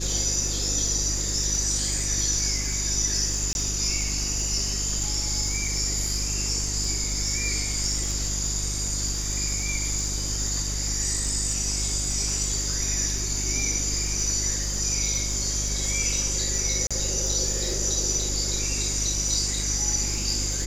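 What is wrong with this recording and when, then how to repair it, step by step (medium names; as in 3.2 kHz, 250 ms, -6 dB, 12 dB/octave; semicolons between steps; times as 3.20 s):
crackle 34 per s -29 dBFS
hum 50 Hz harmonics 8 -31 dBFS
3.53–3.55 s: dropout 21 ms
16.87–16.91 s: dropout 36 ms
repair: de-click; de-hum 50 Hz, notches 8; interpolate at 3.53 s, 21 ms; interpolate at 16.87 s, 36 ms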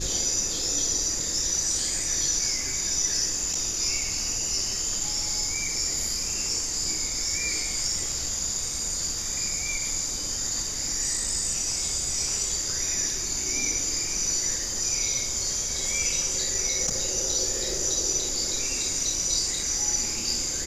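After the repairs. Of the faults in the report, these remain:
nothing left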